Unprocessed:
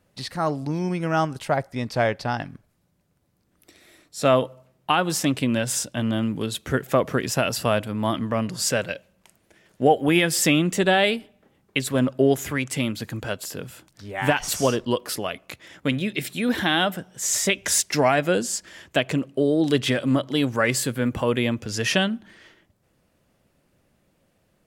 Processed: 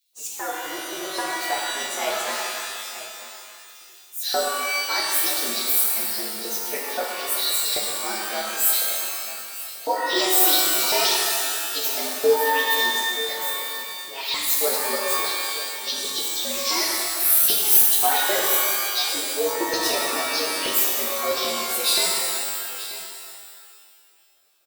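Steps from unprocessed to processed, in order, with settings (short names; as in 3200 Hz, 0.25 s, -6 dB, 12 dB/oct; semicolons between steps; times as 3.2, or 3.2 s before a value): inharmonic rescaling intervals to 117%; RIAA curve recording; notches 50/100/150/200/250/300 Hz; LFO high-pass square 3.8 Hz 400–3700 Hz; on a send: echo 0.936 s -15.5 dB; on the sum: shimmer reverb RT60 2 s, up +12 st, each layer -2 dB, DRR -2 dB; gain -6.5 dB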